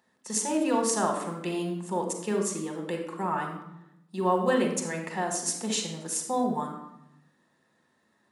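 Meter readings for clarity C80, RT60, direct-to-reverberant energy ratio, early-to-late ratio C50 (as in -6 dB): 8.5 dB, 0.85 s, 2.5 dB, 5.5 dB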